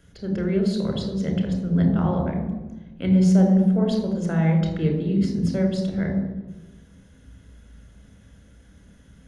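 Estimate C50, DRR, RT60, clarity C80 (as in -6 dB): 5.0 dB, 2.5 dB, 1.2 s, 6.5 dB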